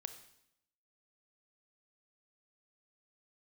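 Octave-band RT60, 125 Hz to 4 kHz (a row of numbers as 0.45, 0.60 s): 0.85, 0.90, 0.80, 0.75, 0.75, 0.75 s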